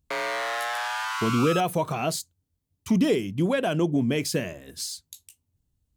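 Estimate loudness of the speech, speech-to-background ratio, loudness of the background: −26.0 LKFS, 3.0 dB, −29.0 LKFS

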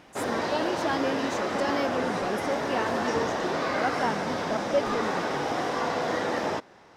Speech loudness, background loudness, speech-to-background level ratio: −32.0 LKFS, −29.0 LKFS, −3.0 dB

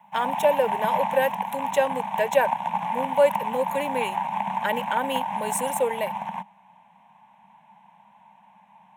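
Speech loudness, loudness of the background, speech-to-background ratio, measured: −26.0 LKFS, −29.0 LKFS, 3.0 dB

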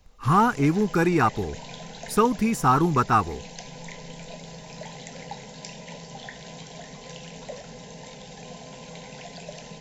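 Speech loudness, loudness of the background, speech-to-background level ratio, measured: −22.0 LKFS, −40.5 LKFS, 18.5 dB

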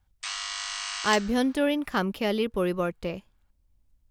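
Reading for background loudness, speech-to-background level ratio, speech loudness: −32.0 LKFS, 5.0 dB, −27.0 LKFS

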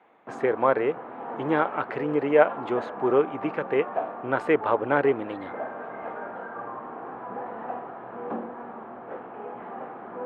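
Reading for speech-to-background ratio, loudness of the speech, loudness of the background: 11.0 dB, −25.5 LKFS, −36.5 LKFS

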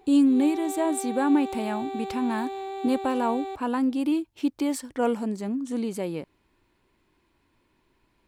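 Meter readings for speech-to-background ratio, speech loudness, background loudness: 8.5 dB, −26.5 LKFS, −35.0 LKFS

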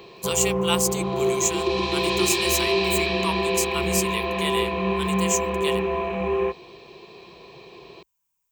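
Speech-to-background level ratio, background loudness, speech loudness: −3.0 dB, −24.0 LKFS, −27.0 LKFS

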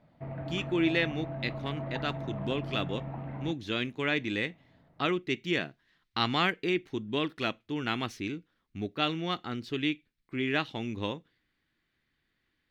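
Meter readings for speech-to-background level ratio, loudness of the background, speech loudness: 6.5 dB, −39.0 LKFS, −32.5 LKFS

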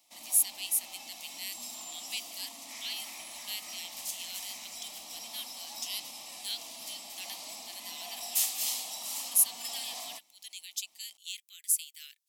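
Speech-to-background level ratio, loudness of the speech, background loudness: 4.5 dB, −33.5 LKFS, −38.0 LKFS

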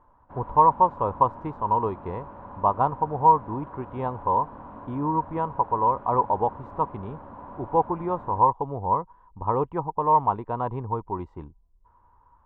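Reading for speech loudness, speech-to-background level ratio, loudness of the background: −25.0 LKFS, 18.0 dB, −43.0 LKFS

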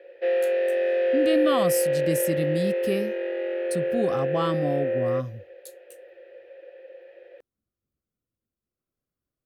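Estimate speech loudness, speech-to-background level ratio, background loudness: −28.5 LKFS, −3.0 dB, −25.5 LKFS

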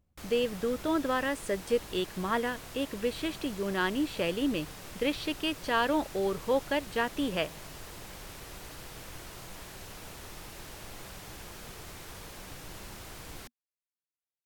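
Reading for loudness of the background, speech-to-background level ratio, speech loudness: −44.5 LKFS, 13.0 dB, −31.5 LKFS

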